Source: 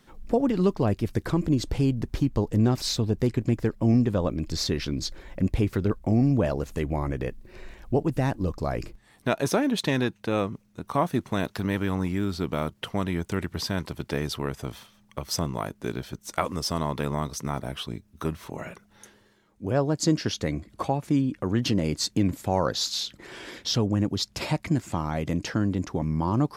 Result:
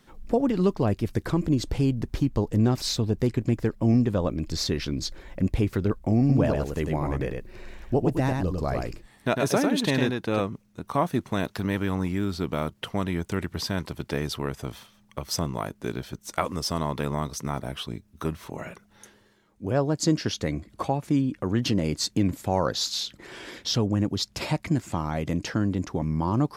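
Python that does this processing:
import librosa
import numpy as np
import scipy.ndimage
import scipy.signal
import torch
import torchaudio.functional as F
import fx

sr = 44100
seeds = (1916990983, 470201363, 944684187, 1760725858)

y = fx.echo_single(x, sr, ms=101, db=-4.0, at=(6.19, 10.4))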